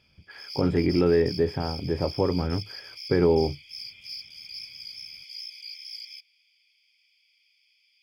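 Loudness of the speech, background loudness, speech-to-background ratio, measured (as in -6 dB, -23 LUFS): -25.0 LUFS, -38.5 LUFS, 13.5 dB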